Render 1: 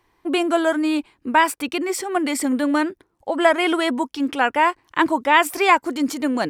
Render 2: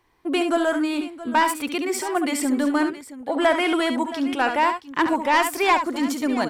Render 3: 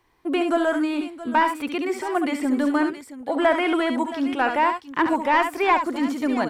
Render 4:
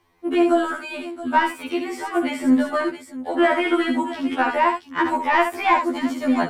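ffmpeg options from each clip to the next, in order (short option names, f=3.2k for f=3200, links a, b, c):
-af "asoftclip=type=tanh:threshold=-8.5dB,aecho=1:1:69|73|673:0.376|0.126|0.168,volume=-1.5dB"
-filter_complex "[0:a]acrossover=split=2900[a][b];[b]acompressor=threshold=-43dB:ratio=4:attack=1:release=60[c];[a][c]amix=inputs=2:normalize=0"
-af "afftfilt=real='re*2*eq(mod(b,4),0)':imag='im*2*eq(mod(b,4),0)':win_size=2048:overlap=0.75,volume=3.5dB"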